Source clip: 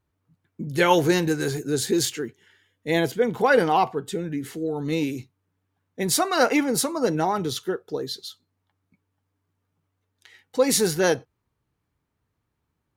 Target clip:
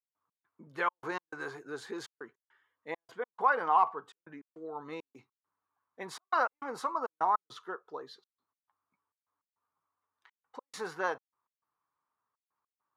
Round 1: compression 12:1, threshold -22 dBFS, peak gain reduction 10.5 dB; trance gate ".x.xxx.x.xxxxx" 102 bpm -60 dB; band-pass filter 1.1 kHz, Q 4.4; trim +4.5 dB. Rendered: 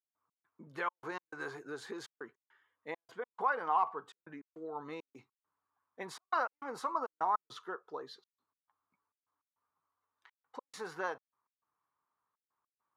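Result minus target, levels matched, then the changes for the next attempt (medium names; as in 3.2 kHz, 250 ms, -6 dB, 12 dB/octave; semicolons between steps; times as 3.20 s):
compression: peak gain reduction +5.5 dB
change: compression 12:1, threshold -16 dBFS, peak gain reduction 5 dB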